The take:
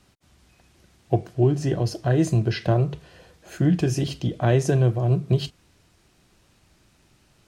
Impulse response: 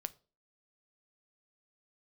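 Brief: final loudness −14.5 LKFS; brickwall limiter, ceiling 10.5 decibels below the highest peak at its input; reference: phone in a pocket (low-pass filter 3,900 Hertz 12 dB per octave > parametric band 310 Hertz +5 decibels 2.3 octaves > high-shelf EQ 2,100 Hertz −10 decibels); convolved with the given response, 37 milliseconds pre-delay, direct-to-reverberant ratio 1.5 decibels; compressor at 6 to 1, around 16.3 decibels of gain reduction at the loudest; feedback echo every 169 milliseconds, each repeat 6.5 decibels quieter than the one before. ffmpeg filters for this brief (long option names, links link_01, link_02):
-filter_complex "[0:a]acompressor=threshold=-33dB:ratio=6,alimiter=level_in=6dB:limit=-24dB:level=0:latency=1,volume=-6dB,aecho=1:1:169|338|507|676|845|1014:0.473|0.222|0.105|0.0491|0.0231|0.0109,asplit=2[link_01][link_02];[1:a]atrim=start_sample=2205,adelay=37[link_03];[link_02][link_03]afir=irnorm=-1:irlink=0,volume=0.5dB[link_04];[link_01][link_04]amix=inputs=2:normalize=0,lowpass=3900,equalizer=frequency=310:width_type=o:width=2.3:gain=5,highshelf=frequency=2100:gain=-10,volume=20dB"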